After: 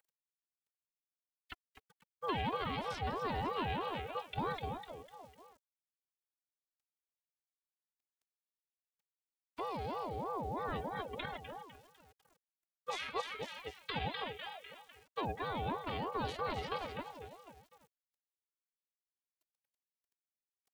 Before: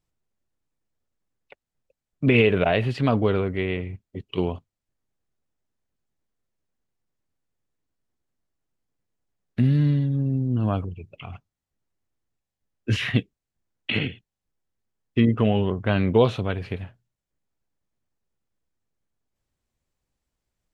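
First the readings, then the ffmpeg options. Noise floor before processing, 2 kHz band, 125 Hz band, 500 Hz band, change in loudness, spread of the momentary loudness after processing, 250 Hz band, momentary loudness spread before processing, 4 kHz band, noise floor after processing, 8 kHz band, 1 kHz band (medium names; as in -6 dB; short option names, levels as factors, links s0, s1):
under -85 dBFS, -13.0 dB, -22.5 dB, -16.0 dB, -16.5 dB, 17 LU, -20.5 dB, 17 LU, -10.0 dB, under -85 dBFS, no reading, -3.5 dB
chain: -filter_complex "[0:a]highshelf=f=3200:g=8,asplit=5[s0][s1][s2][s3][s4];[s1]adelay=250,afreqshift=-120,volume=0.224[s5];[s2]adelay=500,afreqshift=-240,volume=0.0891[s6];[s3]adelay=750,afreqshift=-360,volume=0.0359[s7];[s4]adelay=1000,afreqshift=-480,volume=0.0143[s8];[s0][s5][s6][s7][s8]amix=inputs=5:normalize=0,aphaser=in_gain=1:out_gain=1:delay=4.5:decay=0.27:speed=0.12:type=sinusoidal,areverse,acompressor=threshold=0.0355:ratio=6,areverse,acrusher=bits=10:mix=0:aa=0.000001,afftfilt=real='hypot(re,im)*cos(PI*b)':imag='0':win_size=512:overlap=0.75,acrossover=split=99|290|1600|3800[s9][s10][s11][s12][s13];[s9]acompressor=threshold=0.00316:ratio=4[s14];[s11]acompressor=threshold=0.00631:ratio=4[s15];[s12]acompressor=threshold=0.00316:ratio=4[s16];[s13]acompressor=threshold=0.00158:ratio=4[s17];[s14][s10][s15][s16][s17]amix=inputs=5:normalize=0,aeval=exprs='val(0)*sin(2*PI*630*n/s+630*0.35/3.1*sin(2*PI*3.1*n/s))':c=same,volume=2"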